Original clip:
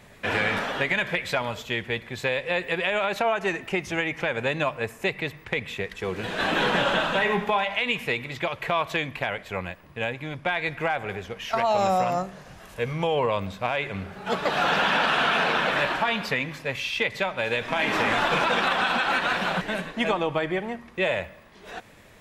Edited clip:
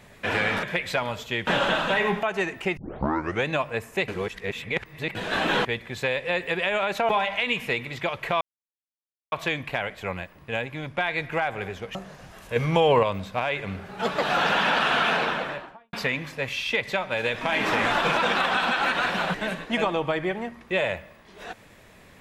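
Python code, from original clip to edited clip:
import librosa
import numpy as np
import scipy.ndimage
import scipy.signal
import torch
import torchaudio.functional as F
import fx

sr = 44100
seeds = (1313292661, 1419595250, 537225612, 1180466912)

y = fx.studio_fade_out(x, sr, start_s=15.35, length_s=0.85)
y = fx.edit(y, sr, fx.cut(start_s=0.63, length_s=0.39),
    fx.swap(start_s=1.86, length_s=1.44, other_s=6.72, other_length_s=0.76),
    fx.tape_start(start_s=3.84, length_s=0.69),
    fx.reverse_span(start_s=5.15, length_s=1.07),
    fx.insert_silence(at_s=8.8, length_s=0.91),
    fx.cut(start_s=11.43, length_s=0.79),
    fx.clip_gain(start_s=12.83, length_s=0.47, db=5.0), tone=tone)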